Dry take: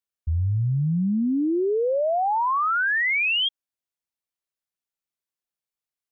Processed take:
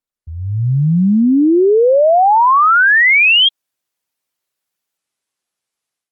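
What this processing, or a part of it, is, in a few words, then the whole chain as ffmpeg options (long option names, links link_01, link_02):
video call: -af "highpass=frequency=140:poles=1,dynaudnorm=framelen=350:gausssize=3:maxgain=14dB,volume=-1dB" -ar 48000 -c:a libopus -b:a 32k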